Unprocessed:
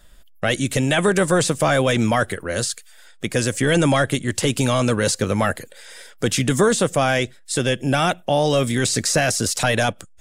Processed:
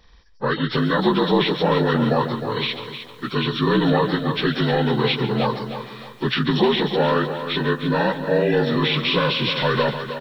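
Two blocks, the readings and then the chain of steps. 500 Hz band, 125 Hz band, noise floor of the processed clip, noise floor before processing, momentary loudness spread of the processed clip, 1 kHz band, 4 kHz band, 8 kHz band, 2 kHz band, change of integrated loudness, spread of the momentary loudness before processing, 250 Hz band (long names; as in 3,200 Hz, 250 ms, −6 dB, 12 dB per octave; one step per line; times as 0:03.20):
−0.5 dB, −1.5 dB, −43 dBFS, −47 dBFS, 8 LU, +0.5 dB, +1.5 dB, below −30 dB, −2.0 dB, −1.0 dB, 7 LU, +0.5 dB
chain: partials spread apart or drawn together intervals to 76%
slap from a distant wall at 24 metres, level −13 dB
feedback echo at a low word length 309 ms, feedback 35%, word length 8 bits, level −9.5 dB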